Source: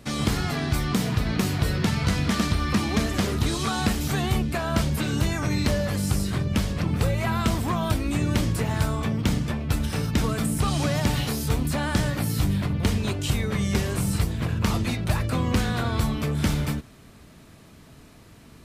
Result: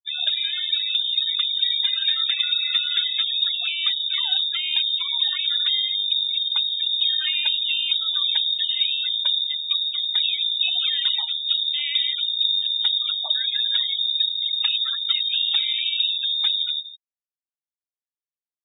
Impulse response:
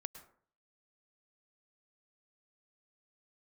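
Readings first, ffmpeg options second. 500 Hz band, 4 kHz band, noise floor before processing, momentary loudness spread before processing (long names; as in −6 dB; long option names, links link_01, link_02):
below −25 dB, +17.5 dB, −49 dBFS, 2 LU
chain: -filter_complex "[0:a]asplit=2[link_01][link_02];[link_02]adelay=168,lowpass=frequency=2900:poles=1,volume=-12dB,asplit=2[link_03][link_04];[link_04]adelay=168,lowpass=frequency=2900:poles=1,volume=0.22,asplit=2[link_05][link_06];[link_06]adelay=168,lowpass=frequency=2900:poles=1,volume=0.22[link_07];[link_01][link_03][link_05][link_07]amix=inputs=4:normalize=0,lowpass=frequency=3200:width_type=q:width=0.5098,lowpass=frequency=3200:width_type=q:width=0.6013,lowpass=frequency=3200:width_type=q:width=0.9,lowpass=frequency=3200:width_type=q:width=2.563,afreqshift=-3800,afftfilt=real='re*gte(hypot(re,im),0.0708)':imag='im*gte(hypot(re,im),0.0708)':win_size=1024:overlap=0.75,volume=1dB"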